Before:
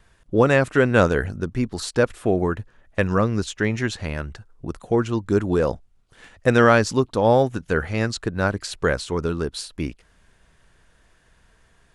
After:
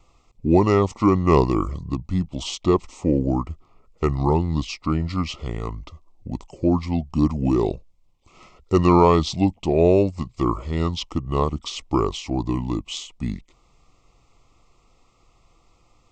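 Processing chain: speed mistake 45 rpm record played at 33 rpm; Butterworth band-stop 1600 Hz, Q 2

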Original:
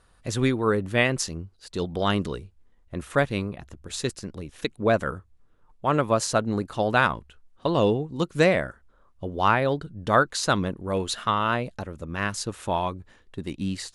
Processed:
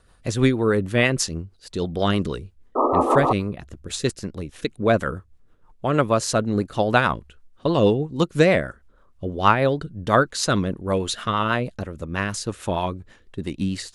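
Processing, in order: painted sound noise, 2.75–3.33, 240–1300 Hz -22 dBFS; rotary speaker horn 6.3 Hz; gain +5.5 dB

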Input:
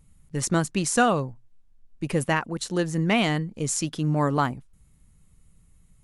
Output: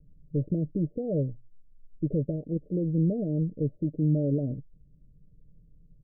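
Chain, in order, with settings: comb 6.7 ms, depth 44%; limiter -17 dBFS, peak gain reduction 10 dB; steep low-pass 610 Hz 96 dB/oct

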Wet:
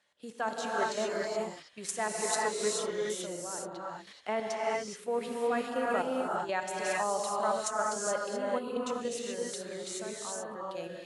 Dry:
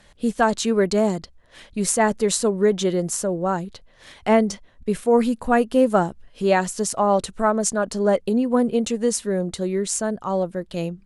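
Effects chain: weighting filter A; level quantiser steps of 11 dB; non-linear reverb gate 0.45 s rising, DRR -3.5 dB; gain -9 dB

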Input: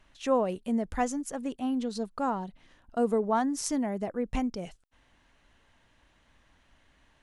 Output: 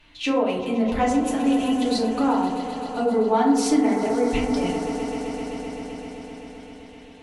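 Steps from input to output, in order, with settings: band shelf 3100 Hz +10 dB 1.3 oct; swelling echo 0.129 s, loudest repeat 5, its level -16.5 dB; compressor, threshold -26 dBFS, peak gain reduction 6.5 dB; 1.37–1.99 high shelf 8300 Hz +11.5 dB; FDN reverb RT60 0.84 s, low-frequency decay 1.55×, high-frequency decay 0.35×, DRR -5.5 dB; gain +1 dB

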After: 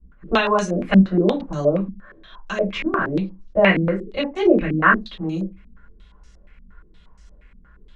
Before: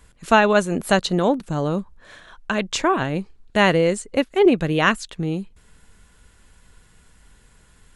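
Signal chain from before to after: reverb, pre-delay 3 ms, DRR -6 dB; stepped low-pass 8.5 Hz 240–5800 Hz; gain -13 dB

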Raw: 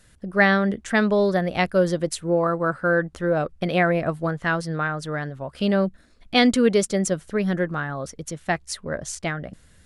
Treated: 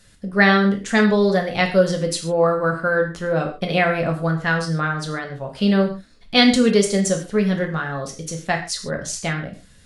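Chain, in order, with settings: bell 4500 Hz +5.5 dB 1.3 oct; non-linear reverb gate 0.17 s falling, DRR 2 dB

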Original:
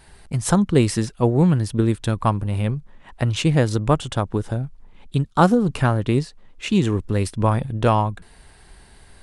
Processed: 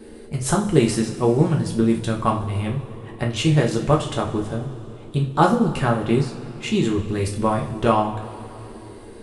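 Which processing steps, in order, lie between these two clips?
band noise 200–490 Hz -43 dBFS; two-slope reverb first 0.35 s, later 3.1 s, from -18 dB, DRR -1 dB; gain -3 dB

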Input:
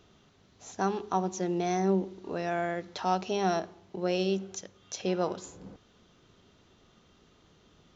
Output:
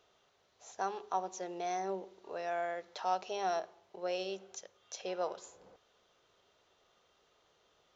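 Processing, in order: resonant low shelf 360 Hz -13 dB, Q 1.5; gain -6.5 dB

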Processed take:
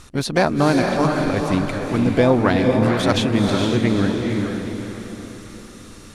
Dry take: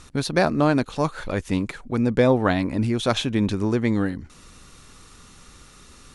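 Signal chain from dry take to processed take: diffused feedback echo 0.463 s, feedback 45%, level -3 dB; harmoniser +5 st -12 dB; gain +2 dB

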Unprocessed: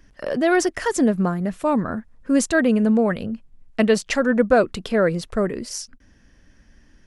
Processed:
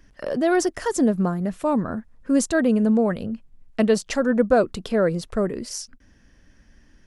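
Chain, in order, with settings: dynamic EQ 2200 Hz, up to -6 dB, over -39 dBFS, Q 1; gain -1 dB

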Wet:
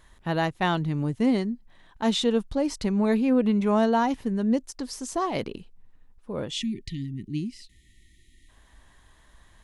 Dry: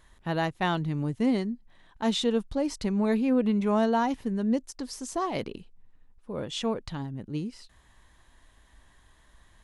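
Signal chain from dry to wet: spectral delete 6.52–8.49, 400–1800 Hz; gain +2.5 dB

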